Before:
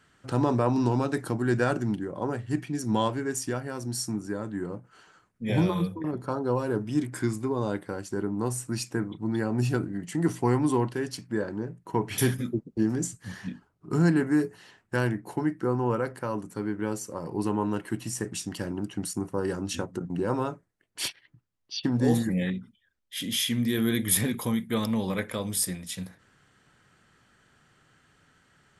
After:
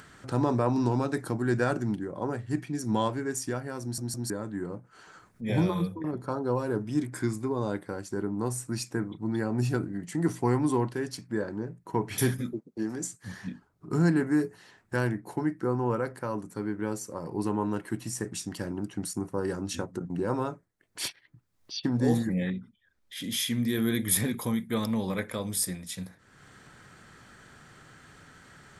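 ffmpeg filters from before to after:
ffmpeg -i in.wav -filter_complex "[0:a]asettb=1/sr,asplit=3[link_01][link_02][link_03];[link_01]atrim=end=12.534[link_04];[link_02]atrim=start=12.53:end=13.23,asetpts=PTS-STARTPTS,afade=type=in:duration=0.004:curve=qsin,afade=type=out:start_time=0.696:duration=0.004:curve=qsin,highpass=frequency=410:poles=1[link_05];[link_03]atrim=start=13.226[link_06];[link_04][link_05]acrossfade=duration=0.004:curve1=hsin:curve2=qsin[link_07];[link_07][link_06]acrossfade=duration=0.004:curve1=qsin:curve2=hsin,asettb=1/sr,asplit=3[link_08][link_09][link_10];[link_08]atrim=end=22.144[link_11];[link_09]atrim=start=22.14:end=23.24,asetpts=PTS-STARTPTS,afade=type=in:duration=0.004:curve=qsin,afade=type=out:start_time=1.096:duration=0.004:curve=qsin,highshelf=frequency=5500:gain=-6.5[link_12];[link_10]atrim=start=23.236[link_13];[link_11][link_12]acrossfade=duration=0.004:curve1=hsin:curve2=qsin[link_14];[link_14][link_13]acrossfade=duration=0.004:curve1=qsin:curve2=hsin,asplit=4[link_15][link_16][link_17][link_18];[link_15]atrim=end=3.982[link_19];[link_16]atrim=start=3.818:end=3.982[link_20];[link_17]atrim=start=3.818:end=3.982[link_21];[link_18]atrim=start=4.298[link_22];[link_19][link_20]acrossfade=duration=0.004:curve1=hsin:curve2=hsin[link_23];[link_23][link_21]acrossfade=duration=0.004:curve1=hsin:curve2=hsin[link_24];[link_24][link_22]acrossfade=duration=0.004:curve1=hsin:curve2=hsin,acompressor=mode=upward:threshold=-39dB:ratio=2.5,equalizer=frequency=2900:width_type=o:width=0.26:gain=-5.5,volume=-1.5dB" out.wav

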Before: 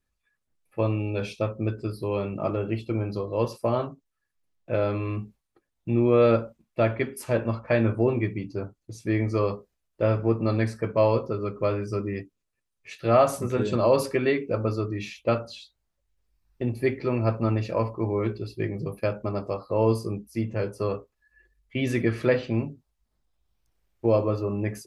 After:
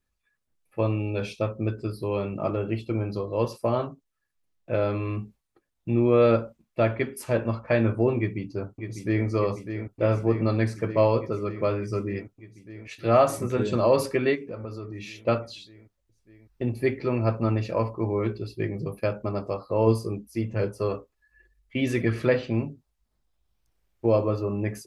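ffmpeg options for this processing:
ffmpeg -i in.wav -filter_complex "[0:a]asplit=2[link_01][link_02];[link_02]afade=type=in:start_time=8.18:duration=0.01,afade=type=out:start_time=9.27:duration=0.01,aecho=0:1:600|1200|1800|2400|3000|3600|4200|4800|5400|6000|6600|7200:0.375837|0.30067|0.240536|0.192429|0.153943|0.123154|0.0985235|0.0788188|0.0630551|0.050444|0.0403552|0.0322842[link_03];[link_01][link_03]amix=inputs=2:normalize=0,asplit=3[link_04][link_05][link_06];[link_04]afade=type=out:start_time=14.34:duration=0.02[link_07];[link_05]acompressor=threshold=-35dB:ratio=3:attack=3.2:release=140:knee=1:detection=peak,afade=type=in:start_time=14.34:duration=0.02,afade=type=out:start_time=15.2:duration=0.02[link_08];[link_06]afade=type=in:start_time=15.2:duration=0.02[link_09];[link_07][link_08][link_09]amix=inputs=3:normalize=0,asettb=1/sr,asplit=3[link_10][link_11][link_12];[link_10]atrim=end=19.874[link_13];[link_11]atrim=start=19.87:end=22.28,asetpts=PTS-STARTPTS,afade=type=in:duration=0.004:curve=qsin,afade=type=out:start_time=2.406:duration=0.004:curve=qsin,aphaser=in_gain=1:out_gain=1:delay=4:decay=0.27:speed=1.3:type=triangular[link_14];[link_12]atrim=start=22.276[link_15];[link_13][link_14]acrossfade=duration=0.004:curve1=hsin:curve2=qsin[link_16];[link_16][link_15]acrossfade=duration=0.004:curve1=qsin:curve2=hsin" out.wav

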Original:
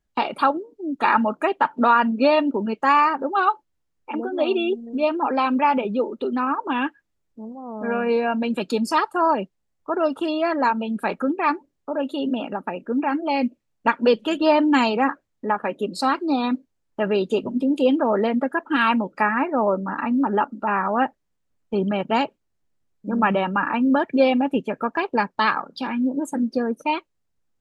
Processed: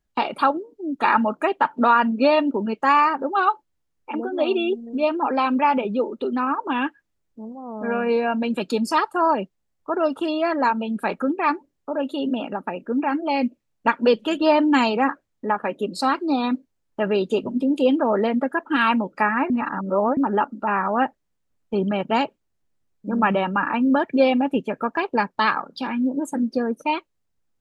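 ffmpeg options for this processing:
ffmpeg -i in.wav -filter_complex "[0:a]asplit=3[link_01][link_02][link_03];[link_01]atrim=end=19.502[link_04];[link_02]atrim=start=19.498:end=20.172,asetpts=PTS-STARTPTS,areverse[link_05];[link_03]atrim=start=20.168[link_06];[link_04][link_05]acrossfade=duration=0.004:curve1=hsin:curve2=hsin[link_07];[link_07][link_06]acrossfade=duration=0.004:curve1=hsin:curve2=hsin" out.wav

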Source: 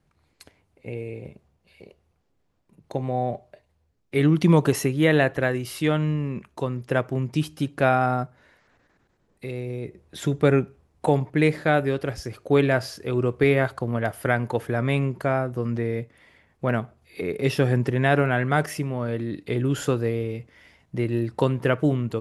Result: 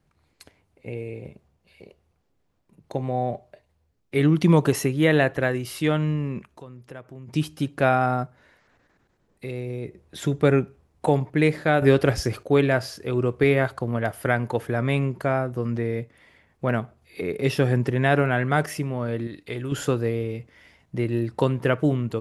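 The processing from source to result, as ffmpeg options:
ffmpeg -i in.wav -filter_complex "[0:a]asplit=3[link_01][link_02][link_03];[link_01]afade=type=out:start_time=6.45:duration=0.02[link_04];[link_02]acompressor=threshold=-50dB:ratio=2:attack=3.2:release=140:knee=1:detection=peak,afade=type=in:start_time=6.45:duration=0.02,afade=type=out:start_time=7.27:duration=0.02[link_05];[link_03]afade=type=in:start_time=7.27:duration=0.02[link_06];[link_04][link_05][link_06]amix=inputs=3:normalize=0,asettb=1/sr,asplit=3[link_07][link_08][link_09];[link_07]atrim=end=19.274[link_10];[link_08]atrim=start=19.27:end=19.72,asetpts=PTS-STARTPTS,afade=type=in:duration=0.004:curve=qsin,afade=type=out:start_time=0.446:duration=0.004:curve=qsin,equalizer=frequency=200:width=0.41:gain=-8.5[link_11];[link_09]atrim=start=19.716[link_12];[link_10][link_11]acrossfade=duration=0.004:curve1=hsin:curve2=qsin[link_13];[link_13][link_12]acrossfade=duration=0.004:curve1=qsin:curve2=hsin,asplit=3[link_14][link_15][link_16];[link_14]atrim=end=11.822[link_17];[link_15]atrim=start=11.818:end=12.432,asetpts=PTS-STARTPTS,volume=8dB[link_18];[link_16]atrim=start=12.428[link_19];[link_17][link_18]acrossfade=duration=0.004:curve1=hsin:curve2=hsin[link_20];[link_20][link_19]acrossfade=duration=0.004:curve1=hsin:curve2=hsin" out.wav

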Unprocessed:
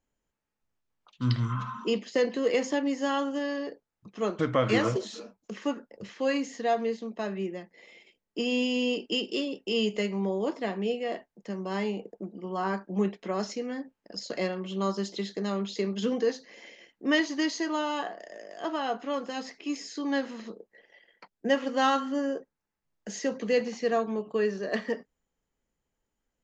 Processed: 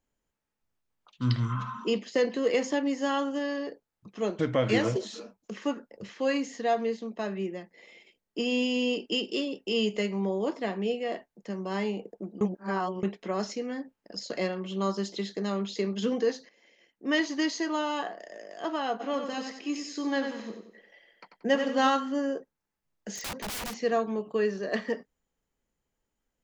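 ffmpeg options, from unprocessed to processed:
ffmpeg -i in.wav -filter_complex "[0:a]asettb=1/sr,asplit=3[link_01][link_02][link_03];[link_01]atrim=end=4.214[link_04];[link_02]atrim=start=4.21:end=5.03,asetpts=PTS-STARTPTS,afade=type=in:duration=0.004:curve=qsin,afade=type=out:start_time=0.816:duration=0.004:curve=qsin,equalizer=frequency=1200:width_type=o:width=0.42:gain=-9[link_05];[link_03]atrim=start=5.026[link_06];[link_04][link_05]acrossfade=duration=0.004:curve1=hsin:curve2=qsin[link_07];[link_07][link_06]acrossfade=duration=0.004:curve1=qsin:curve2=hsin,asplit=3[link_08][link_09][link_10];[link_08]afade=type=out:start_time=18.99:duration=0.02[link_11];[link_09]aecho=1:1:91|182|273|364:0.447|0.17|0.0645|0.0245,afade=type=in:start_time=18.99:duration=0.02,afade=type=out:start_time=21.87:duration=0.02[link_12];[link_10]afade=type=in:start_time=21.87:duration=0.02[link_13];[link_11][link_12][link_13]amix=inputs=3:normalize=0,asplit=3[link_14][link_15][link_16];[link_14]afade=type=out:start_time=23.15:duration=0.02[link_17];[link_15]aeval=exprs='(mod(33.5*val(0)+1,2)-1)/33.5':channel_layout=same,afade=type=in:start_time=23.15:duration=0.02,afade=type=out:start_time=23.8:duration=0.02[link_18];[link_16]afade=type=in:start_time=23.8:duration=0.02[link_19];[link_17][link_18][link_19]amix=inputs=3:normalize=0,asplit=4[link_20][link_21][link_22][link_23];[link_20]atrim=end=12.412[link_24];[link_21]atrim=start=12.408:end=13.032,asetpts=PTS-STARTPTS,areverse[link_25];[link_22]atrim=start=13.028:end=16.49,asetpts=PTS-STARTPTS,afade=type=out:start_time=3.458:duration=0.004:curve=hsin:silence=0.177828[link_26];[link_23]atrim=start=16.49,asetpts=PTS-STARTPTS,afade=type=in:duration=0.75:curve=qua:silence=0.177828[link_27];[link_24][link_25]acrossfade=duration=0.004:curve1=hsin:curve2=hsin[link_28];[link_26][link_27]concat=n=2:v=0:a=1[link_29];[link_28][link_29]acrossfade=duration=0.004:curve1=hsin:curve2=hsin" out.wav

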